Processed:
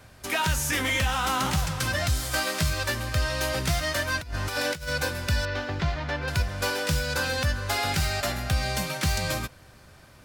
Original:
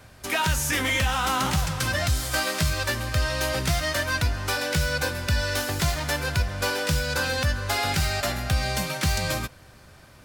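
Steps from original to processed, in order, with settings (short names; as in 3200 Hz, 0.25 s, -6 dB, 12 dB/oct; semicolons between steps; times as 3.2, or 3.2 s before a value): 4.21–4.93 negative-ratio compressor -28 dBFS, ratio -0.5; 5.45–6.28 air absorption 230 m; gain -1.5 dB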